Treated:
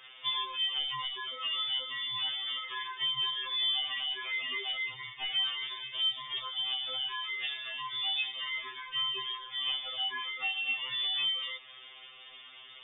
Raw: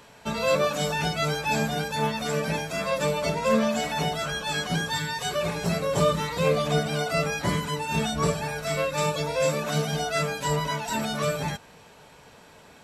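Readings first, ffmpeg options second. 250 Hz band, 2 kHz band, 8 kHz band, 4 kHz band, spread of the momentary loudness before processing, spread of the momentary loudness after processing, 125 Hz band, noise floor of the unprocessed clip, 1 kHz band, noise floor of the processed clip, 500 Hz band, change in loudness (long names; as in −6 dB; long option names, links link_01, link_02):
below −30 dB, −6.0 dB, below −40 dB, +4.5 dB, 5 LU, 8 LU, below −30 dB, −51 dBFS, −13.5 dB, −52 dBFS, −30.5 dB, −5.5 dB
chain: -af "acompressor=threshold=-33dB:ratio=6,lowpass=frequency=3100:width_type=q:width=0.5098,lowpass=frequency=3100:width_type=q:width=0.6013,lowpass=frequency=3100:width_type=q:width=0.9,lowpass=frequency=3100:width_type=q:width=2.563,afreqshift=-3700,afftfilt=real='re*2.45*eq(mod(b,6),0)':imag='im*2.45*eq(mod(b,6),0)':win_size=2048:overlap=0.75,volume=3dB"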